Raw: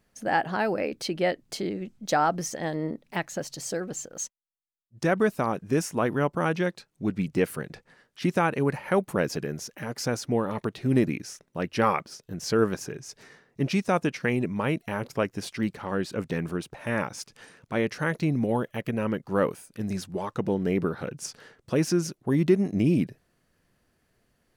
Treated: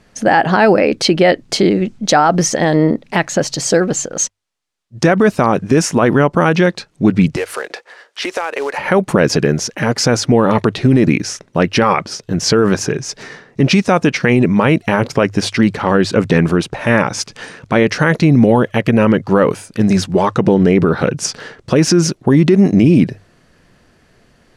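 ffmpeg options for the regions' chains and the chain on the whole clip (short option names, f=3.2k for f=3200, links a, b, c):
-filter_complex "[0:a]asettb=1/sr,asplit=3[a][b][c];[a]atrim=end=7.364[d];[b]atrim=start=7.36:end=8.78,asetpts=PTS-STARTPTS,afade=t=in:d=0.004:c=qsin,afade=t=out:st=1.416:d=0.004:c=qsin,highpass=f=440:w=0.5412,highpass=f=440:w=1.3066,acompressor=threshold=-35dB:ratio=6:attack=3.2:release=140:knee=1:detection=peak,acrusher=bits=4:mode=log:mix=0:aa=0.000001[e];[c]atrim=start=8.776[f];[d][e]acrossfade=d=0.004:c1=hsin:c2=qsin[g];[g][f]acrossfade=d=0.004:c1=qsin:c2=hsin,lowpass=7.2k,bandreject=f=50:t=h:w=6,bandreject=f=100:t=h:w=6,alimiter=level_in=19.5dB:limit=-1dB:release=50:level=0:latency=1,volume=-1dB"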